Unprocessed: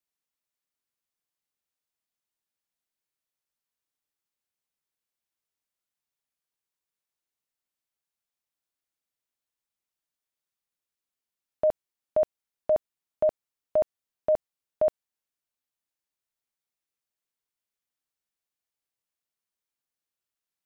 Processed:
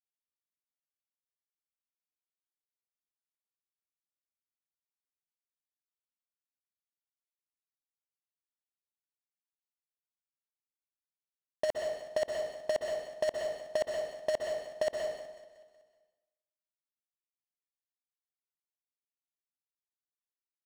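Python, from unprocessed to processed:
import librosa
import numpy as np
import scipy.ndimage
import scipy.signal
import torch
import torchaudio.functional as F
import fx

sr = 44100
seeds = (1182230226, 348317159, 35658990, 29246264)

p1 = fx.over_compress(x, sr, threshold_db=-25.0, ratio=-0.5)
p2 = np.clip(p1, -10.0 ** (-21.5 / 20.0), 10.0 ** (-21.5 / 20.0))
p3 = fx.low_shelf(p2, sr, hz=180.0, db=-10.5)
p4 = fx.quant_dither(p3, sr, seeds[0], bits=6, dither='none')
p5 = p4 + fx.echo_feedback(p4, sr, ms=186, feedback_pct=54, wet_db=-17, dry=0)
p6 = fx.rev_plate(p5, sr, seeds[1], rt60_s=0.97, hf_ratio=0.85, predelay_ms=110, drr_db=1.0)
y = np.interp(np.arange(len(p6)), np.arange(len(p6))[::3], p6[::3])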